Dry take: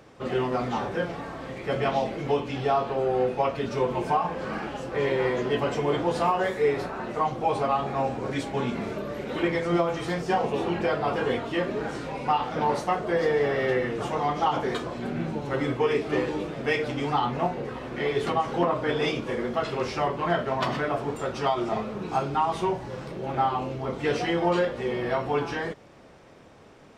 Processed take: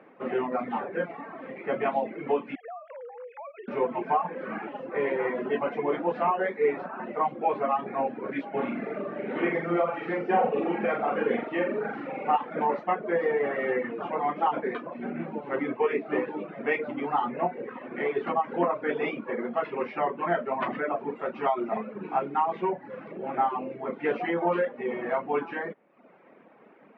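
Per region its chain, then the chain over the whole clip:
0:02.55–0:03.68: three sine waves on the formant tracks + high-pass filter 900 Hz 6 dB per octave + downward compressor 4 to 1, threshold −39 dBFS
0:08.48–0:12.36: notch filter 990 Hz, Q 8.2 + flutter between parallel walls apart 7.3 metres, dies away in 0.73 s
whole clip: reverb reduction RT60 0.83 s; Chebyshev band-pass filter 200–2,300 Hz, order 3

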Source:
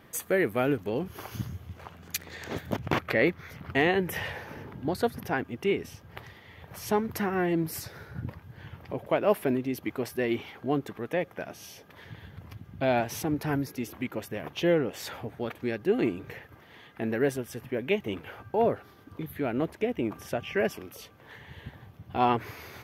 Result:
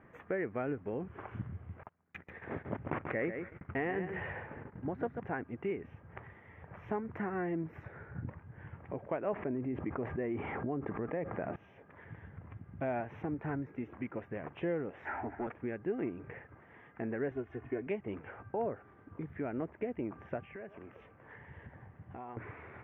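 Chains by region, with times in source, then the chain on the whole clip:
0:01.83–0:05.20: repeating echo 138 ms, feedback 17%, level −9 dB + noise gate −43 dBFS, range −26 dB
0:09.33–0:11.56: head-to-tape spacing loss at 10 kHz 27 dB + notch filter 1,500 Hz, Q 22 + envelope flattener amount 70%
0:15.05–0:15.47: parametric band 1,100 Hz +9.5 dB 0.89 octaves + phaser with its sweep stopped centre 760 Hz, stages 8 + leveller curve on the samples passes 2
0:17.31–0:17.87: high-frequency loss of the air 74 metres + comb filter 2.8 ms, depth 99%
0:20.44–0:22.37: downward compressor 5 to 1, threshold −40 dBFS + echo through a band-pass that steps 121 ms, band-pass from 680 Hz, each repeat 0.7 octaves, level −9 dB
whole clip: inverse Chebyshev low-pass filter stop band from 4,200 Hz, stop band 40 dB; downward compressor 2 to 1, threshold −32 dBFS; level −4 dB

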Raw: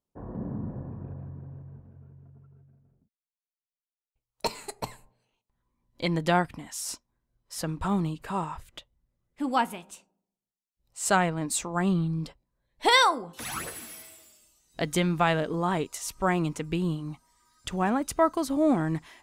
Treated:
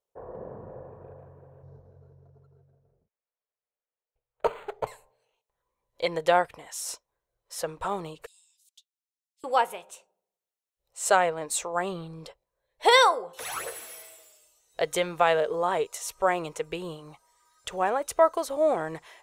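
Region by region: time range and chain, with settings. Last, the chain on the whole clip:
0:01.63–0:04.87: low-pass filter 6,300 Hz + low-shelf EQ 330 Hz +8.5 dB + linearly interpolated sample-rate reduction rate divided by 8×
0:08.26–0:09.44: inverse Chebyshev high-pass filter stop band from 1,400 Hz, stop band 60 dB + high-shelf EQ 8,100 Hz −8 dB
whole clip: low shelf with overshoot 350 Hz −10.5 dB, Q 3; notch filter 4,800 Hz, Q 13

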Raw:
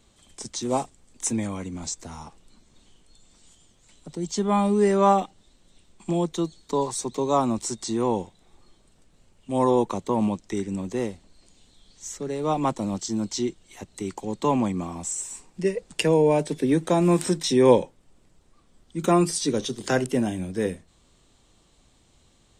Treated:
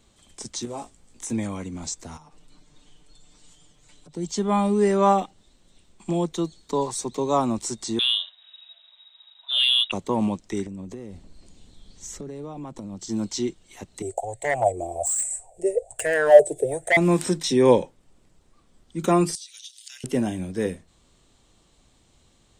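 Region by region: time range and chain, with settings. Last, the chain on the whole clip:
0:00.65–0:01.30: downward compressor 4 to 1, threshold −32 dBFS + double-tracking delay 18 ms −6 dB
0:02.17–0:04.15: high-shelf EQ 10,000 Hz −5 dB + downward compressor 16 to 1, threshold −48 dBFS + comb filter 6.7 ms, depth 78%
0:07.99–0:09.92: voice inversion scrambler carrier 3,800 Hz + mid-hump overdrive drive 10 dB, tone 3,000 Hz, clips at −9 dBFS + Butterworth high-pass 570 Hz 96 dB per octave
0:10.66–0:13.09: low-shelf EQ 450 Hz +9 dB + downward compressor 16 to 1, threshold −32 dBFS
0:14.02–0:16.97: drawn EQ curve 120 Hz 0 dB, 200 Hz −30 dB, 310 Hz −19 dB, 690 Hz +10 dB, 1,100 Hz −26 dB, 1,900 Hz −15 dB, 5,400 Hz −16 dB, 8,000 Hz +10 dB, 12,000 Hz 0 dB + hard clipping −21 dBFS + auto-filter bell 1.2 Hz 320–2,100 Hz +18 dB
0:19.35–0:20.04: Chebyshev high-pass filter 2,900 Hz, order 3 + downward compressor 4 to 1, threshold −38 dBFS
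whole clip: no processing

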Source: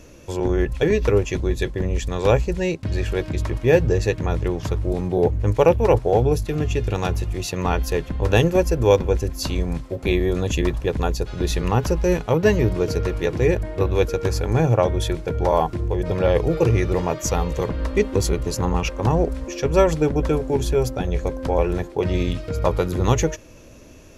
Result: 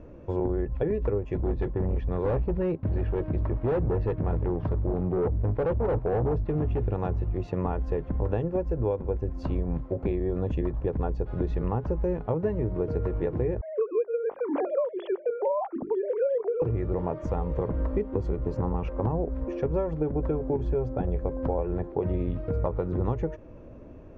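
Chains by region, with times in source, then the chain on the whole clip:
0:01.35–0:06.84: Savitzky-Golay smoothing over 15 samples + hard clipping −19 dBFS
0:13.61–0:16.62: three sine waves on the formant tracks + mains-hum notches 50/100/150/200/250/300/350/400 Hz
whole clip: downward compressor 10 to 1, threshold −23 dBFS; low-pass filter 1,000 Hz 12 dB per octave

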